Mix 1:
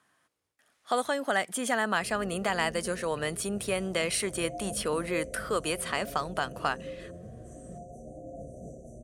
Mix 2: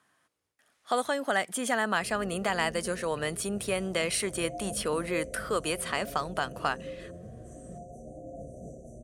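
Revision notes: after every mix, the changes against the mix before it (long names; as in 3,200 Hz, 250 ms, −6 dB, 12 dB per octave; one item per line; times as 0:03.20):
nothing changed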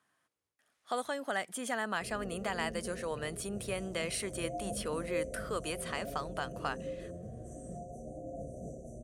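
speech −7.0 dB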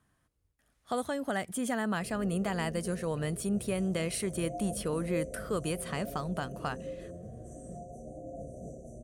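speech: remove meter weighting curve A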